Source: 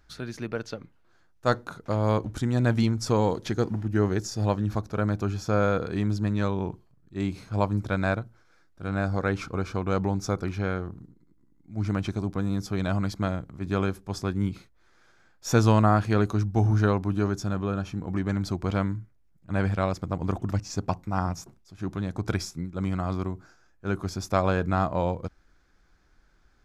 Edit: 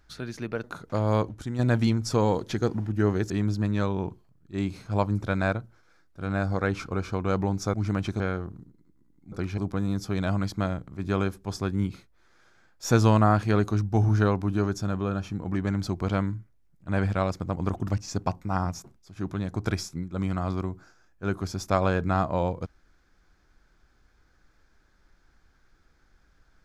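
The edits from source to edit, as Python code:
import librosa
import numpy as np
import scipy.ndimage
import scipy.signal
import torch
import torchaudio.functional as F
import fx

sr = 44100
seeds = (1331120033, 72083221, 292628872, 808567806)

y = fx.edit(x, sr, fx.cut(start_s=0.64, length_s=0.96),
    fx.clip_gain(start_s=2.24, length_s=0.31, db=-6.0),
    fx.cut(start_s=4.26, length_s=1.66),
    fx.swap(start_s=10.36, length_s=0.26, other_s=11.74, other_length_s=0.46), tone=tone)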